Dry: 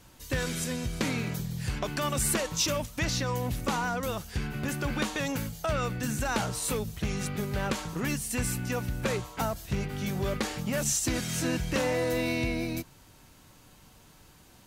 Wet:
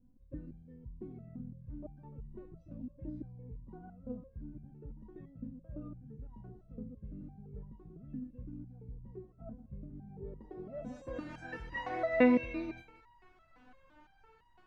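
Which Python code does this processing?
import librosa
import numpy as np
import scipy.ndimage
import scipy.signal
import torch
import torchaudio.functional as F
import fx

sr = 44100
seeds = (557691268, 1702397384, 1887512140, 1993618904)

p1 = fx.dynamic_eq(x, sr, hz=450.0, q=0.78, threshold_db=-38.0, ratio=4.0, max_db=3)
p2 = p1 + fx.echo_single(p1, sr, ms=186, db=-15.5, dry=0)
p3 = fx.filter_sweep_lowpass(p2, sr, from_hz=200.0, to_hz=1700.0, start_s=9.99, end_s=11.56, q=1.3)
p4 = fx.resonator_held(p3, sr, hz=5.9, low_hz=250.0, high_hz=960.0)
y = p4 * librosa.db_to_amplitude(10.5)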